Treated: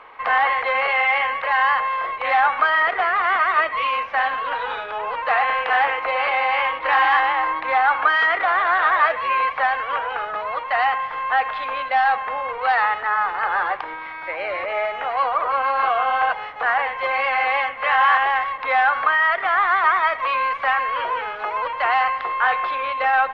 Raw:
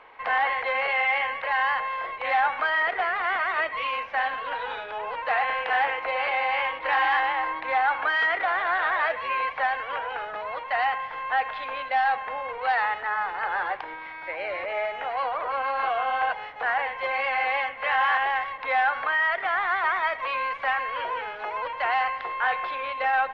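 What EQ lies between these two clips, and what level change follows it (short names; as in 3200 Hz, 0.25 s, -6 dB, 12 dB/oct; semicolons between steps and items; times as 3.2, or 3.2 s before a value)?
bell 1200 Hz +7.5 dB 0.28 oct; +4.5 dB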